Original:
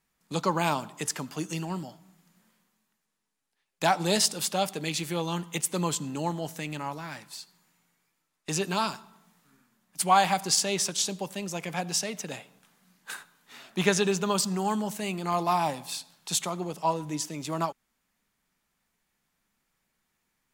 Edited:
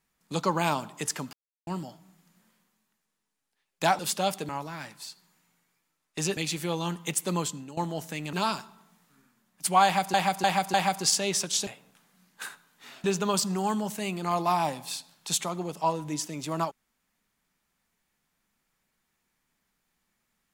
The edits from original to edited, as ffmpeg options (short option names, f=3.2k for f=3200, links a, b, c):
-filter_complex "[0:a]asplit=13[a][b][c][d][e][f][g][h][i][j][k][l][m];[a]atrim=end=1.33,asetpts=PTS-STARTPTS,afade=t=out:st=1.326:d=0.004:c=hsin[n];[b]atrim=start=1.33:end=1.67,asetpts=PTS-STARTPTS,volume=0[o];[c]atrim=start=1.67:end=3.992,asetpts=PTS-STARTPTS,afade=t=in:d=0.004:c=hsin[p];[d]atrim=start=4.338:end=4.842[q];[e]atrim=start=6.798:end=8.682[r];[f]atrim=start=4.838:end=6.24,asetpts=PTS-STARTPTS,afade=t=out:st=0.992:d=0.41:silence=0.177828[s];[g]atrim=start=6.24:end=6.802,asetpts=PTS-STARTPTS,afade=t=in:d=0.004:c=hsin:silence=0.177828[t];[h]atrim=start=8.678:end=10.492[u];[i]atrim=start=10.188:end=10.492[v];[j]atrim=start=10.188:end=10.492[w];[k]atrim=start=10.188:end=11.122[x];[l]atrim=start=12.348:end=13.722[y];[m]atrim=start=14.048[z];[n][o][p]concat=n=3:v=0:a=1[aa];[aa][q]acrossfade=d=0.004:c1=hsin:c2=hsin[ab];[ab][r]acrossfade=d=0.004:c1=hsin:c2=hsin[ac];[s][t]concat=n=2:v=0:a=1[ad];[ac][ad]acrossfade=d=0.004:c1=hsin:c2=hsin[ae];[ae][u]acrossfade=d=0.004:c1=hsin:c2=hsin[af];[af][v]acrossfade=d=0.004:c1=hsin:c2=hsin[ag];[ag][w]acrossfade=d=0.004:c1=hsin:c2=hsin[ah];[ah][x]acrossfade=d=0.004:c1=hsin:c2=hsin[ai];[ai][y]acrossfade=d=0.004:c1=hsin:c2=hsin[aj];[aj][z]acrossfade=d=0.004:c1=hsin:c2=hsin"